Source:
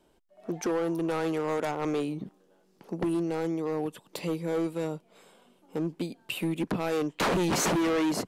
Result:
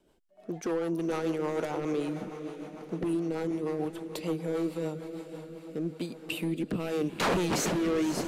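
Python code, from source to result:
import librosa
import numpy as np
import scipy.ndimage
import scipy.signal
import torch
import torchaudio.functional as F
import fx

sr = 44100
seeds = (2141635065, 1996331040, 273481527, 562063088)

y = fx.echo_diffused(x, sr, ms=521, feedback_pct=57, wet_db=-10.0)
y = fx.rotary_switch(y, sr, hz=6.7, then_hz=0.85, switch_at_s=5.06)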